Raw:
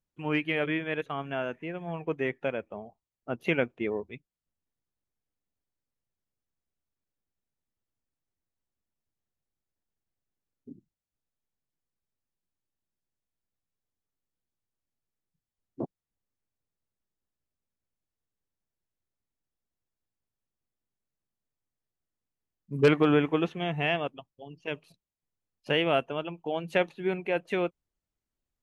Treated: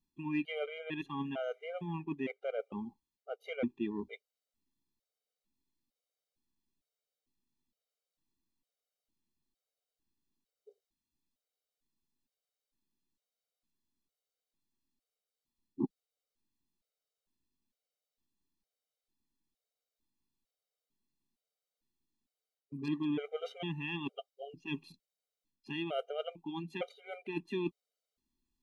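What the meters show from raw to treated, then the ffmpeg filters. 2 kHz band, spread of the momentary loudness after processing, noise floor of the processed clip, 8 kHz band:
-12.5 dB, 10 LU, under -85 dBFS, n/a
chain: -af "areverse,acompressor=threshold=-34dB:ratio=12,areverse,equalizer=f=100:t=o:w=0.67:g=-8,equalizer=f=250:t=o:w=0.67:g=8,equalizer=f=1.6k:t=o:w=0.67:g=-7,equalizer=f=4k:t=o:w=0.67:g=7,afftfilt=real='re*gt(sin(2*PI*1.1*pts/sr)*(1-2*mod(floor(b*sr/1024/400),2)),0)':imag='im*gt(sin(2*PI*1.1*pts/sr)*(1-2*mod(floor(b*sr/1024/400),2)),0)':win_size=1024:overlap=0.75,volume=2.5dB"

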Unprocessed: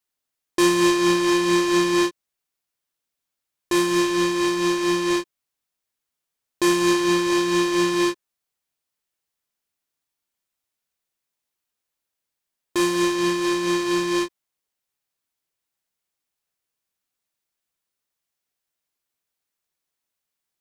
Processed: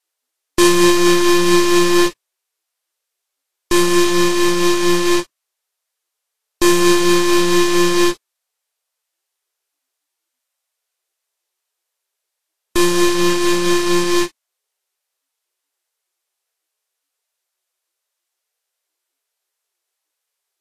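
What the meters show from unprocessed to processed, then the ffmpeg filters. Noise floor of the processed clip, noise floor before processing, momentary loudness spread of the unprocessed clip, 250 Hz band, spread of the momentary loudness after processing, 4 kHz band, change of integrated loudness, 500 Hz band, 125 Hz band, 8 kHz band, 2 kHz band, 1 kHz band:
-79 dBFS, -84 dBFS, 6 LU, +5.5 dB, 6 LU, +7.0 dB, +6.0 dB, +5.5 dB, +7.0 dB, +8.5 dB, +5.5 dB, +5.5 dB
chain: -af "aeval=exprs='0.335*(cos(1*acos(clip(val(0)/0.335,-1,1)))-cos(1*PI/2))+0.0473*(cos(8*acos(clip(val(0)/0.335,-1,1)))-cos(8*PI/2))':c=same,volume=5.5dB" -ar 44100 -c:a libvorbis -b:a 32k

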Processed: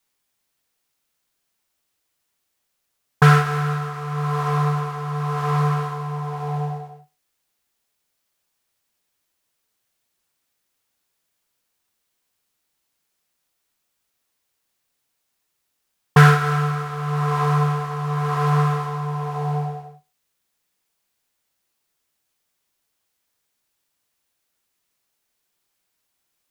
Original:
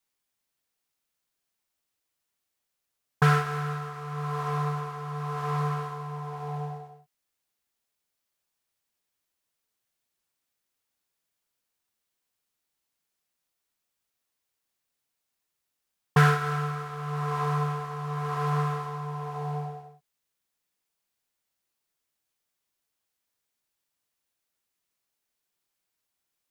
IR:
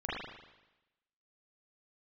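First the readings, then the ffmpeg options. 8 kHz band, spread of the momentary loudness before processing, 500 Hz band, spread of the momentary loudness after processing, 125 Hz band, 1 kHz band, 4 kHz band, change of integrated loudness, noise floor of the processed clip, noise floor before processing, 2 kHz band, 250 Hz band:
+7.5 dB, 13 LU, +7.0 dB, 13 LU, +9.0 dB, +7.0 dB, +7.5 dB, +8.0 dB, -75 dBFS, -83 dBFS, +7.5 dB, +9.0 dB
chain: -filter_complex "[0:a]asplit=2[a][b];[1:a]atrim=start_sample=2205,afade=t=out:st=0.31:d=0.01,atrim=end_sample=14112,asetrate=79380,aresample=44100[c];[b][c]afir=irnorm=-1:irlink=0,volume=-16dB[d];[a][d]amix=inputs=2:normalize=0,volume=7dB"

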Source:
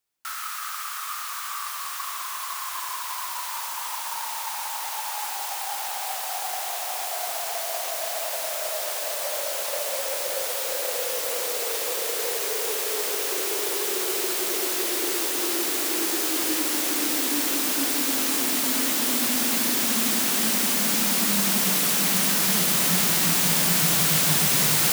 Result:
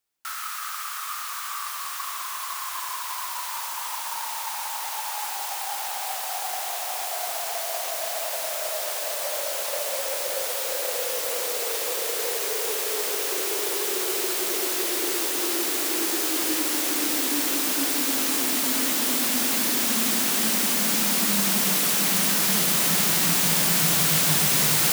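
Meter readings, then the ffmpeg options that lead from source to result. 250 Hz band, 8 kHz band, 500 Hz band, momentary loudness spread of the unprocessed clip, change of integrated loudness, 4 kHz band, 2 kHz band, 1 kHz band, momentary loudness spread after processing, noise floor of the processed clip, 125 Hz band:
-0.5 dB, 0.0 dB, 0.0 dB, 11 LU, 0.0 dB, 0.0 dB, 0.0 dB, 0.0 dB, 11 LU, -33 dBFS, n/a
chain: -af "bandreject=f=60:t=h:w=6,bandreject=f=120:t=h:w=6,bandreject=f=180:t=h:w=6,bandreject=f=240:t=h:w=6"

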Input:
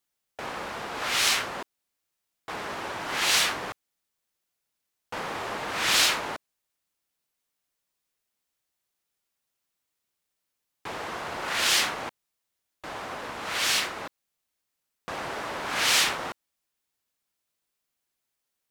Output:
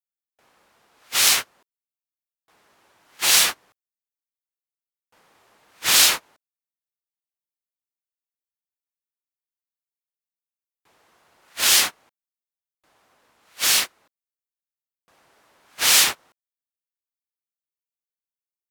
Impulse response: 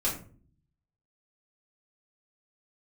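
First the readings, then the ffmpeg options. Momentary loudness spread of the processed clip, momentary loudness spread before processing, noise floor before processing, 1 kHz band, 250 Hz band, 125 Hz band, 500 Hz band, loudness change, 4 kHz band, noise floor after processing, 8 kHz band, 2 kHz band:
11 LU, 18 LU, -83 dBFS, -2.5 dB, -4.5 dB, -4.5 dB, -4.5 dB, +9.0 dB, +5.0 dB, under -85 dBFS, +9.0 dB, +1.5 dB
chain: -af "aemphasis=mode=production:type=50kf,agate=range=-29dB:threshold=-22dB:ratio=16:detection=peak,volume=1.5dB"

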